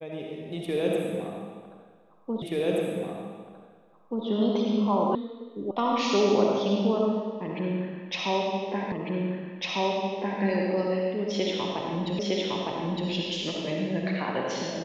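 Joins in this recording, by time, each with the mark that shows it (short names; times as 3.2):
2.42 repeat of the last 1.83 s
5.15 sound cut off
5.71 sound cut off
8.92 repeat of the last 1.5 s
12.19 repeat of the last 0.91 s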